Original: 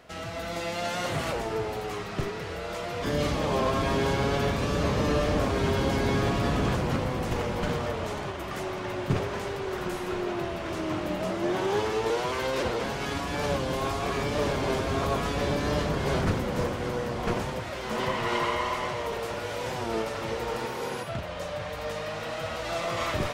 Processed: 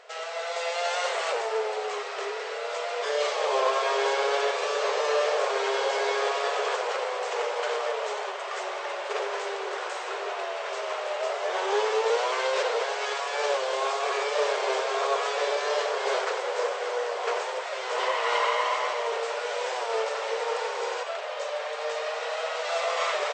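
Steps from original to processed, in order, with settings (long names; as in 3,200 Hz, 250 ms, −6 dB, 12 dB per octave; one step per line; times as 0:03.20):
linear-phase brick-wall band-pass 390–8,500 Hz
echo with shifted repeats 92 ms, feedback 65%, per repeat +71 Hz, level −15 dB
level +3 dB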